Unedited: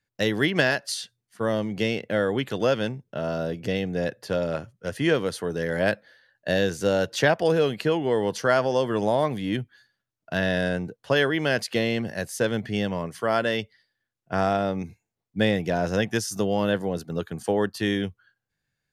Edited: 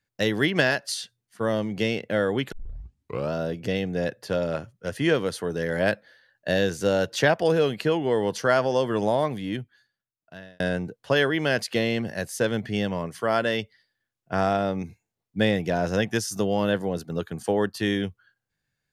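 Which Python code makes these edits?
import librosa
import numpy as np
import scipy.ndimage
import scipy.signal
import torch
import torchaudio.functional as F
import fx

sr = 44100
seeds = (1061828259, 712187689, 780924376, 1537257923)

y = fx.edit(x, sr, fx.tape_start(start_s=2.52, length_s=0.81),
    fx.fade_out_span(start_s=9.06, length_s=1.54), tone=tone)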